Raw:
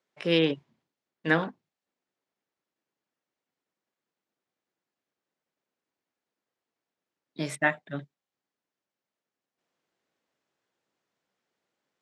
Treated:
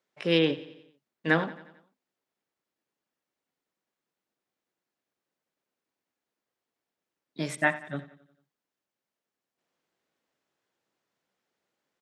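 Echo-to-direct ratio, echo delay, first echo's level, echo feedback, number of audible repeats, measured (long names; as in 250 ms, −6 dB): −15.5 dB, 89 ms, −17.0 dB, 53%, 4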